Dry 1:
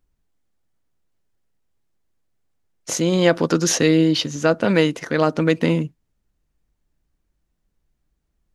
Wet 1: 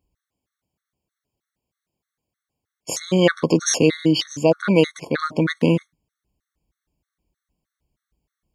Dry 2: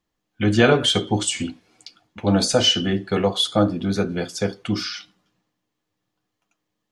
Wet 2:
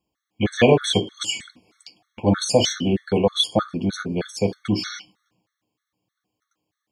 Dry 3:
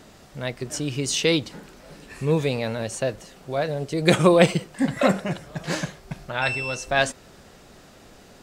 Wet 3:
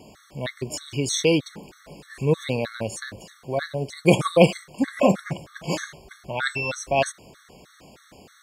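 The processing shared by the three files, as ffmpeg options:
-af "highpass=50,afftfilt=real='re*gt(sin(2*PI*3.2*pts/sr)*(1-2*mod(floor(b*sr/1024/1100),2)),0)':imag='im*gt(sin(2*PI*3.2*pts/sr)*(1-2*mod(floor(b*sr/1024/1100),2)),0)':win_size=1024:overlap=0.75,volume=2dB"

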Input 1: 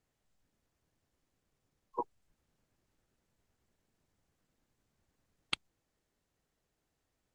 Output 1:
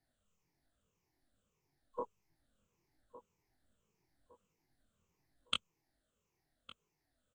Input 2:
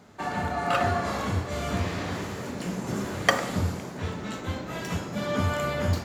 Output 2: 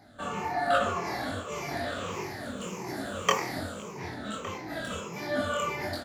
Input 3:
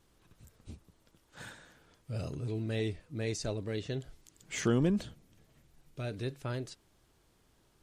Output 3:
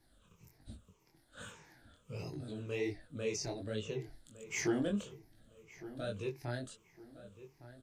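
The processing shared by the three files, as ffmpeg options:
-filter_complex "[0:a]afftfilt=real='re*pow(10,14/40*sin(2*PI*(0.77*log(max(b,1)*sr/1024/100)/log(2)-(-1.7)*(pts-256)/sr)))':imag='im*pow(10,14/40*sin(2*PI*(0.77*log(max(b,1)*sr/1024/100)/log(2)-(-1.7)*(pts-256)/sr)))':win_size=1024:overlap=0.75,acrossover=split=260|3000[a][b][c];[a]acompressor=threshold=-38dB:ratio=10[d];[d][b][c]amix=inputs=3:normalize=0,flanger=delay=18.5:depth=6.7:speed=1.3,asplit=2[e][f];[f]adelay=1160,lowpass=f=2.2k:p=1,volume=-15dB,asplit=2[g][h];[h]adelay=1160,lowpass=f=2.2k:p=1,volume=0.36,asplit=2[i][j];[j]adelay=1160,lowpass=f=2.2k:p=1,volume=0.36[k];[g][i][k]amix=inputs=3:normalize=0[l];[e][l]amix=inputs=2:normalize=0,volume=-1dB"

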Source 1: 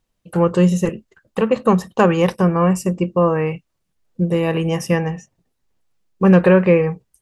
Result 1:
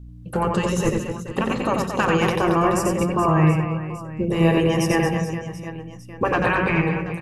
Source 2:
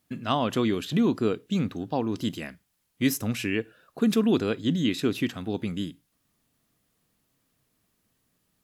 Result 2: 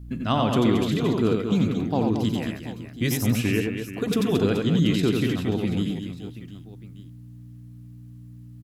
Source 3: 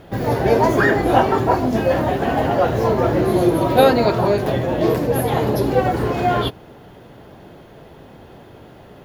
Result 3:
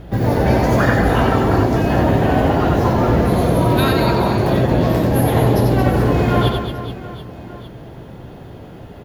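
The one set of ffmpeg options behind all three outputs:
-filter_complex "[0:a]aeval=exprs='val(0)+0.00562*(sin(2*PI*60*n/s)+sin(2*PI*2*60*n/s)/2+sin(2*PI*3*60*n/s)/3+sin(2*PI*4*60*n/s)/4+sin(2*PI*5*60*n/s)/5)':c=same,afftfilt=real='re*lt(hypot(re,im),0.891)':imag='im*lt(hypot(re,im),0.891)':win_size=1024:overlap=0.75,lowshelf=f=240:g=8,asplit=2[a][b];[b]aecho=0:1:90|225|427.5|731.2|1187:0.631|0.398|0.251|0.158|0.1[c];[a][c]amix=inputs=2:normalize=0"

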